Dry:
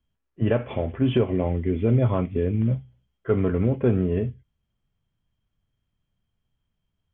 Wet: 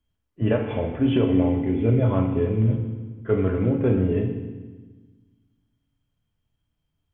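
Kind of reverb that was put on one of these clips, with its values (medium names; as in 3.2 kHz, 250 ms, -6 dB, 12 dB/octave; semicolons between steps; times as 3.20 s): FDN reverb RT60 1.3 s, low-frequency decay 1.4×, high-frequency decay 1×, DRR 3 dB; trim -1 dB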